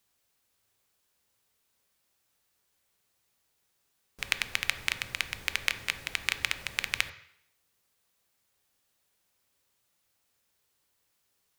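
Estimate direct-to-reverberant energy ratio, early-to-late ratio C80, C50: 9.0 dB, 16.0 dB, 13.0 dB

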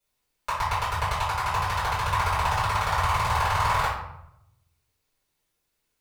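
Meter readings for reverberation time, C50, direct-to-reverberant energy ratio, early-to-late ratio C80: 0.80 s, 2.0 dB, −14.0 dB, 6.0 dB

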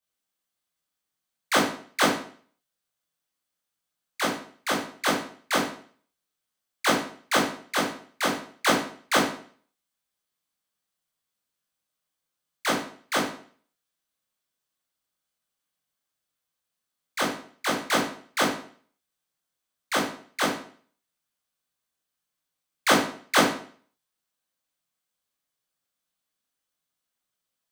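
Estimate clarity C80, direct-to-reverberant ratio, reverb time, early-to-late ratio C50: 8.5 dB, −6.5 dB, 0.50 s, 5.0 dB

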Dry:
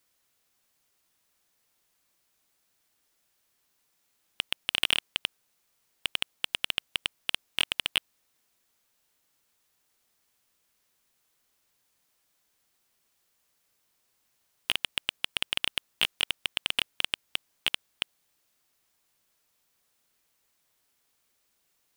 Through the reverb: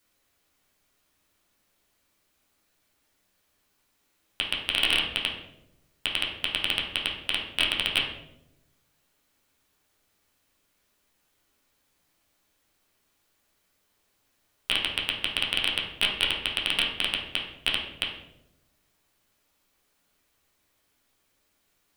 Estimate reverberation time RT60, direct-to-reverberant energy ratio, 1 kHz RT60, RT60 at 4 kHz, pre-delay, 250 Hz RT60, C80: 0.90 s, −3.0 dB, 0.70 s, 0.55 s, 10 ms, 1.2 s, 7.5 dB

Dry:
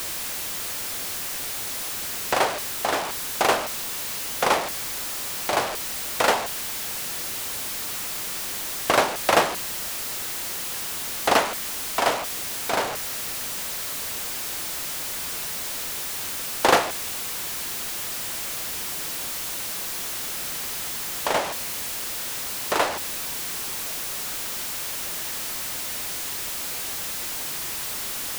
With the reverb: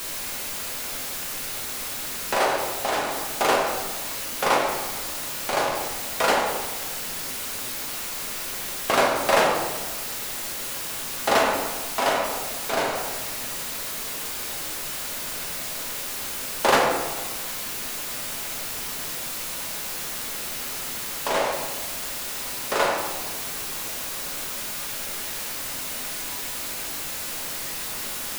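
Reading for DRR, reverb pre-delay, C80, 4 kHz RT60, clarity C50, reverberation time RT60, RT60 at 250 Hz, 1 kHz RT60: −2.0 dB, 4 ms, 5.0 dB, 0.70 s, 3.0 dB, 1.3 s, 1.5 s, 1.3 s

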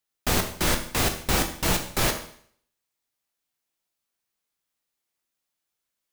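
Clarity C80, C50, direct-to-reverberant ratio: 12.5 dB, 9.5 dB, 4.5 dB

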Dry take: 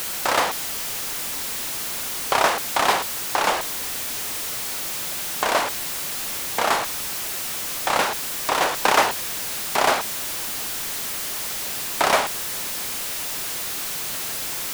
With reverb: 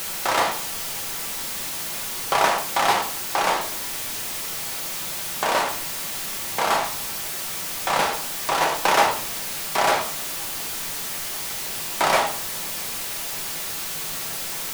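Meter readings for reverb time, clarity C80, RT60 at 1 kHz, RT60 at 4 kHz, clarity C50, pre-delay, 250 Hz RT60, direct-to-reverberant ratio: 0.60 s, 15.0 dB, 0.55 s, 0.40 s, 10.5 dB, 5 ms, 0.80 s, 2.5 dB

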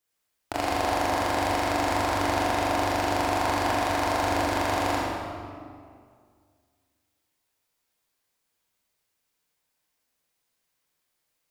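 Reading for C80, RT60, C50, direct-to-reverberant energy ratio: −0.5 dB, 2.1 s, −3.0 dB, −6.5 dB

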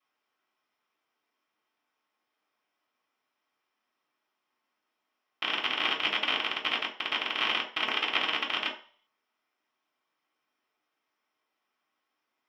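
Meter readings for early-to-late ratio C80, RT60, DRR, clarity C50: 13.5 dB, 0.45 s, −12.5 dB, 9.0 dB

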